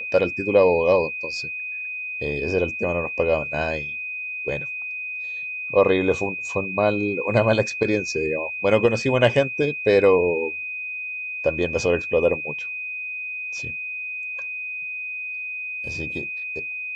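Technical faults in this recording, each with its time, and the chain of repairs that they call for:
tone 2500 Hz -28 dBFS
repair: notch 2500 Hz, Q 30

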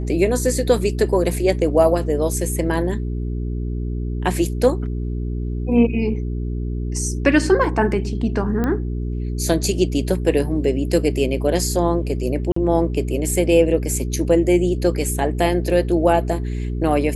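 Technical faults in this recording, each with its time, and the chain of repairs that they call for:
hum 60 Hz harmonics 7 -24 dBFS
8.64 pop -11 dBFS
12.52–12.56 gap 44 ms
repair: de-click; de-hum 60 Hz, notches 7; interpolate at 12.52, 44 ms

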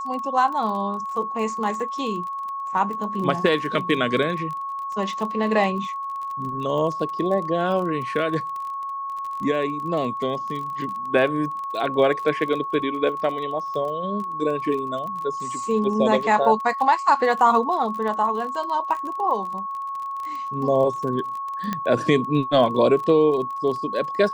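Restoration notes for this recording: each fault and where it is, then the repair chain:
crackle 27/s -30 dBFS
tone 1100 Hz -27 dBFS
21.73 pop -12 dBFS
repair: de-click; notch 1100 Hz, Q 30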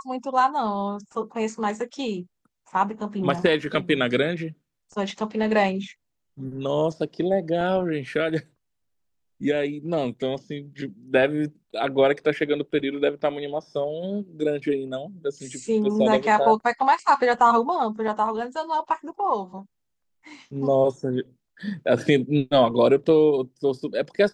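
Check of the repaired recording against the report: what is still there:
none

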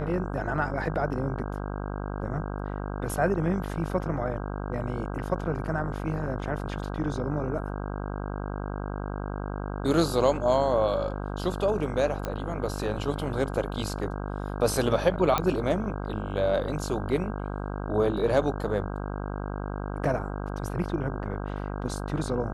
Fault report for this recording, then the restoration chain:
buzz 50 Hz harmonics 32 -33 dBFS
12.25 pop -17 dBFS
15.38 pop -10 dBFS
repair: de-click; de-hum 50 Hz, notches 32

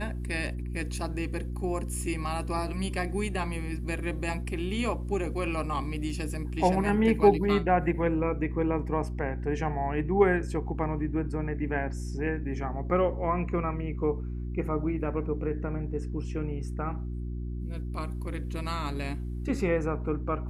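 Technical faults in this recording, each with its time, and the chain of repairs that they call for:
hum 60 Hz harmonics 6 -34 dBFS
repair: de-hum 60 Hz, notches 6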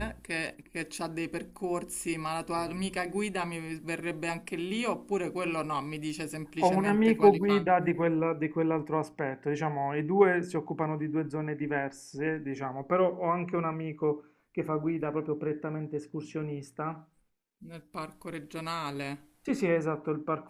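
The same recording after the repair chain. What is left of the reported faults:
none

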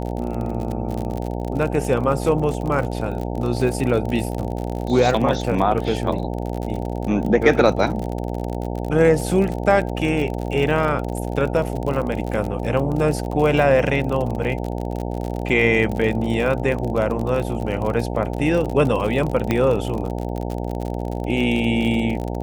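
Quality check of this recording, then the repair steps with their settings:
buzz 60 Hz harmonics 15 -26 dBFS
crackle 46/s -25 dBFS
19.51 pop -7 dBFS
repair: de-click; de-hum 60 Hz, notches 15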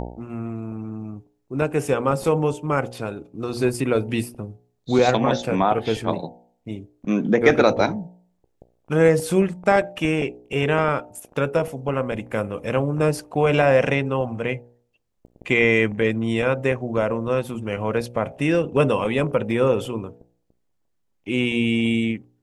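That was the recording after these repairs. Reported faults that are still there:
19.51 pop

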